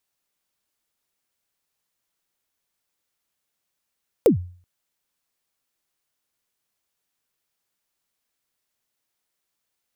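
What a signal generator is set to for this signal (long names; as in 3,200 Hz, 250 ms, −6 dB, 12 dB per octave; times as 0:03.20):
synth kick length 0.38 s, from 540 Hz, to 89 Hz, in 112 ms, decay 0.45 s, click on, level −8 dB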